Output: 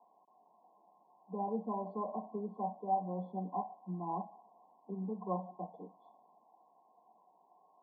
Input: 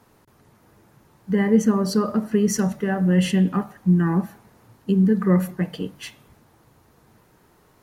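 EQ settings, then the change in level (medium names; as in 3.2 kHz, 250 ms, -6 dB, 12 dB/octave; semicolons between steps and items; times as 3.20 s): cascade formant filter a; steep high-pass 170 Hz 72 dB/octave; brick-wall FIR band-stop 1.1–3.3 kHz; +4.5 dB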